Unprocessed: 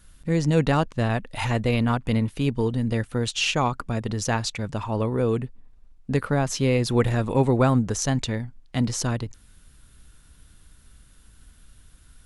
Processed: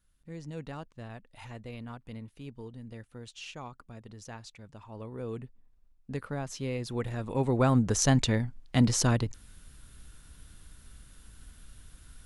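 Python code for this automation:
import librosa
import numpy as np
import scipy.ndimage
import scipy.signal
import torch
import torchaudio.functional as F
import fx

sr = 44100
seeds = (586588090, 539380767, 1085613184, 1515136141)

y = fx.gain(x, sr, db=fx.line((4.8, -20.0), (5.44, -12.5), (7.1, -12.5), (8.04, 0.5)))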